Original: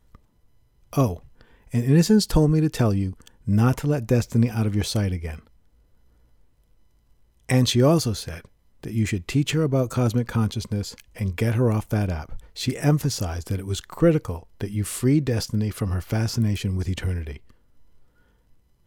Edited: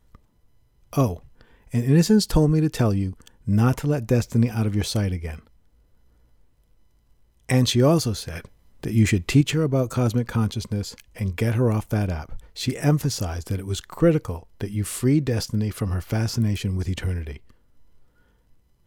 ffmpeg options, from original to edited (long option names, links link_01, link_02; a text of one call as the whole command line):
ffmpeg -i in.wav -filter_complex "[0:a]asplit=3[link_01][link_02][link_03];[link_01]atrim=end=8.352[link_04];[link_02]atrim=start=8.348:end=9.412,asetpts=PTS-STARTPTS,volume=5dB[link_05];[link_03]atrim=start=9.408[link_06];[link_04][link_05]acrossfade=duration=0.004:curve1=hsin:curve2=hsin[link_07];[link_07][link_06]acrossfade=duration=0.004:curve1=hsin:curve2=hsin" out.wav